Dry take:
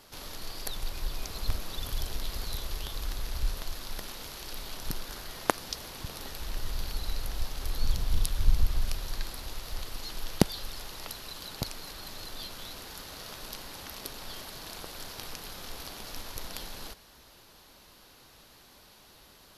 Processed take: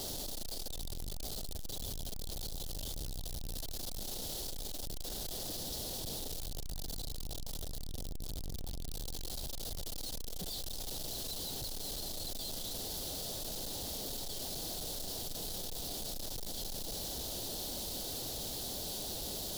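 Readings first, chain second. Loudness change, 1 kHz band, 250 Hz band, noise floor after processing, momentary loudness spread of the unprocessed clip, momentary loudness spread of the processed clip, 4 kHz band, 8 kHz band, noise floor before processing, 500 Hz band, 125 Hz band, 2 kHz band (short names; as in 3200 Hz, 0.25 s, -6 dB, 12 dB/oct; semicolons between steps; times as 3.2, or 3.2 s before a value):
-3.0 dB, -9.0 dB, -7.0 dB, -40 dBFS, 22 LU, 5 LU, -1.0 dB, +2.0 dB, -56 dBFS, -4.0 dB, -7.5 dB, -13.5 dB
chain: infinite clipping; band shelf 1600 Hz -15 dB; limiter -27.5 dBFS, peak gain reduction 3.5 dB; gain -5 dB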